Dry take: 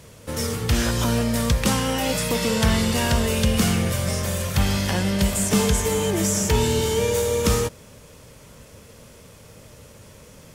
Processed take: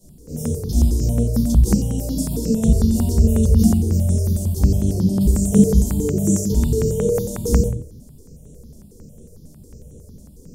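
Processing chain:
Chebyshev band-stop filter 350–6,700 Hz, order 2
parametric band 350 Hz +5 dB 2.6 octaves
mains-hum notches 50/100 Hz
rectangular room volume 220 cubic metres, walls furnished, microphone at 4.9 metres
step-sequenced phaser 11 Hz 450–4,800 Hz
level −7.5 dB

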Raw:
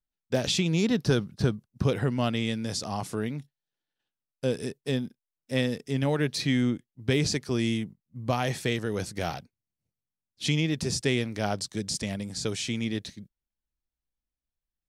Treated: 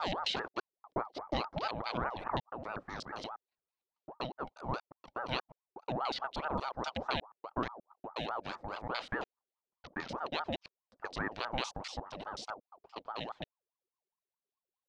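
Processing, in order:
slices reordered back to front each 120 ms, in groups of 7
auto-filter low-pass square 3.8 Hz 850–3,500 Hz
ring modulator whose carrier an LFO sweeps 730 Hz, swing 50%, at 4.8 Hz
level −8.5 dB

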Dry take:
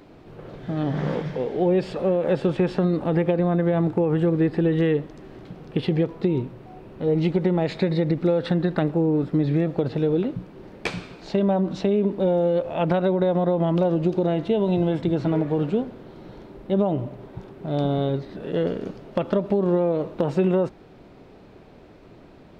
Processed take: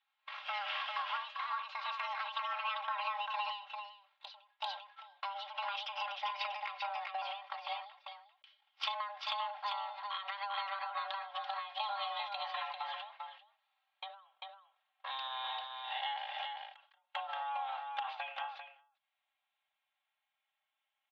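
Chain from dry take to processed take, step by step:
gliding playback speed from 143% → 71%
first difference
single-sideband voice off tune +400 Hz 210–3,100 Hz
downward compressor 6 to 1, threshold −54 dBFS, peak gain reduction 18 dB
comb filter 3.7 ms, depth 82%
noise gate −58 dBFS, range −34 dB
high-shelf EQ 2,300 Hz +9.5 dB
single-tap delay 395 ms −4.5 dB
every ending faded ahead of time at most 100 dB per second
level +12.5 dB

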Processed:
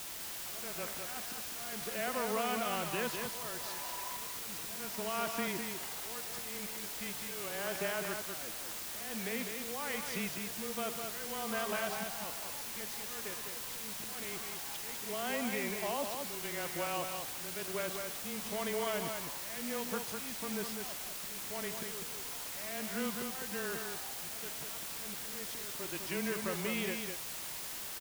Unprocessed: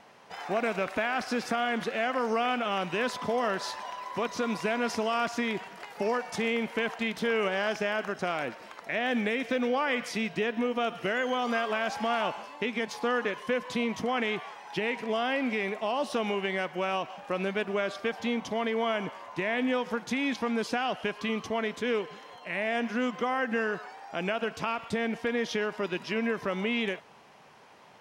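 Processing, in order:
volume swells 570 ms
frequency shifter −16 Hz
bit-depth reduction 6 bits, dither triangular
single-tap delay 202 ms −5.5 dB
level −7.5 dB

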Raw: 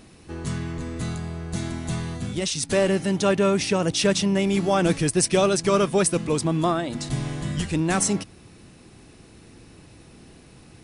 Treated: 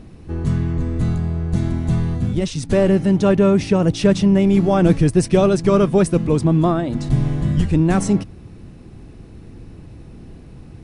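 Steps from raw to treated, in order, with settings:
spectral tilt −3 dB per octave
level +1.5 dB

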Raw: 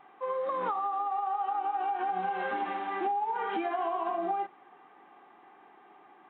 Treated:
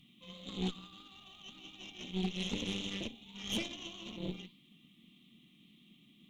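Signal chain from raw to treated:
flanger 1.7 Hz, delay 3.5 ms, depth 9.9 ms, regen −73%
elliptic band-stop filter 210–3,300 Hz, stop band 40 dB
harmonic generator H 6 −12 dB, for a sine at −42.5 dBFS
level +18 dB

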